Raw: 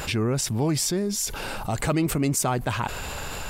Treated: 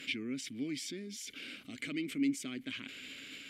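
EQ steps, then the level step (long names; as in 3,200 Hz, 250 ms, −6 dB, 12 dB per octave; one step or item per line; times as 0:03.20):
formant filter i
spectral tilt +2.5 dB per octave
+1.0 dB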